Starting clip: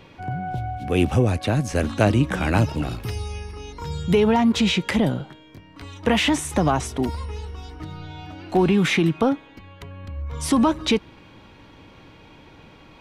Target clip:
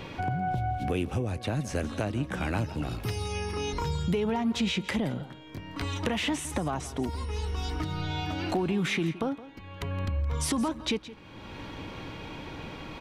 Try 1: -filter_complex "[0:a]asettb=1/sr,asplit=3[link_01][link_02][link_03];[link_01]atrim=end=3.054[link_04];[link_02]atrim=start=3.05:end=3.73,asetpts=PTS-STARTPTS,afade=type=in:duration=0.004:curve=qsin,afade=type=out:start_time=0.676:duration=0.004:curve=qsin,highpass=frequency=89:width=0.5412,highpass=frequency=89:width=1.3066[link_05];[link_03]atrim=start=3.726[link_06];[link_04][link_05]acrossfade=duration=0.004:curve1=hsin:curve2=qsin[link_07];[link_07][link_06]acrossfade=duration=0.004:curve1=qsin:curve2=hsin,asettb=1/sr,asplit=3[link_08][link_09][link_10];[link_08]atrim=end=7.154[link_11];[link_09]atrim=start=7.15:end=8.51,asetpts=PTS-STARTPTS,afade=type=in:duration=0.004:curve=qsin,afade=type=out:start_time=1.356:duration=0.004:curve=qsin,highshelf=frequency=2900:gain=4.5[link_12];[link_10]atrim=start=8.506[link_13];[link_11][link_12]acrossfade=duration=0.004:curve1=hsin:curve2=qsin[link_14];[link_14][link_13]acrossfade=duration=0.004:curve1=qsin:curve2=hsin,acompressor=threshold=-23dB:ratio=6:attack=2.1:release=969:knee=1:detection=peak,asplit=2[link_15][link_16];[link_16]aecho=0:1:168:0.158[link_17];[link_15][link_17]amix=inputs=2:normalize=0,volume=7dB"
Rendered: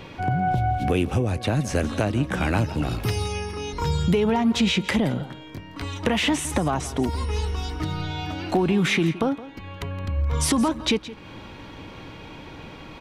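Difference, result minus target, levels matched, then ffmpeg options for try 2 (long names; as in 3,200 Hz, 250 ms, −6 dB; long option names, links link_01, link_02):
downward compressor: peak gain reduction −7 dB
-filter_complex "[0:a]asettb=1/sr,asplit=3[link_01][link_02][link_03];[link_01]atrim=end=3.054[link_04];[link_02]atrim=start=3.05:end=3.73,asetpts=PTS-STARTPTS,afade=type=in:duration=0.004:curve=qsin,afade=type=out:start_time=0.676:duration=0.004:curve=qsin,highpass=frequency=89:width=0.5412,highpass=frequency=89:width=1.3066[link_05];[link_03]atrim=start=3.726[link_06];[link_04][link_05]acrossfade=duration=0.004:curve1=hsin:curve2=qsin[link_07];[link_07][link_06]acrossfade=duration=0.004:curve1=qsin:curve2=hsin,asettb=1/sr,asplit=3[link_08][link_09][link_10];[link_08]atrim=end=7.154[link_11];[link_09]atrim=start=7.15:end=8.51,asetpts=PTS-STARTPTS,afade=type=in:duration=0.004:curve=qsin,afade=type=out:start_time=1.356:duration=0.004:curve=qsin,highshelf=frequency=2900:gain=4.5[link_12];[link_10]atrim=start=8.506[link_13];[link_11][link_12]acrossfade=duration=0.004:curve1=hsin:curve2=qsin[link_14];[link_14][link_13]acrossfade=duration=0.004:curve1=qsin:curve2=hsin,acompressor=threshold=-31.5dB:ratio=6:attack=2.1:release=969:knee=1:detection=peak,asplit=2[link_15][link_16];[link_16]aecho=0:1:168:0.158[link_17];[link_15][link_17]amix=inputs=2:normalize=0,volume=7dB"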